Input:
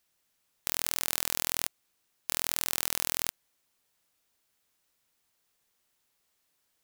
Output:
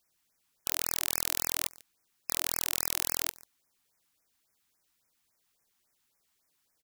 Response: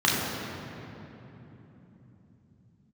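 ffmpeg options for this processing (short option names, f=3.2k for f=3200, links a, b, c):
-filter_complex "[0:a]asplit=2[a][b];[b]aecho=0:1:143:0.075[c];[a][c]amix=inputs=2:normalize=0,afftfilt=real='re*(1-between(b*sr/1024,440*pow(3700/440,0.5+0.5*sin(2*PI*3.6*pts/sr))/1.41,440*pow(3700/440,0.5+0.5*sin(2*PI*3.6*pts/sr))*1.41))':imag='im*(1-between(b*sr/1024,440*pow(3700/440,0.5+0.5*sin(2*PI*3.6*pts/sr))/1.41,440*pow(3700/440,0.5+0.5*sin(2*PI*3.6*pts/sr))*1.41))':win_size=1024:overlap=0.75"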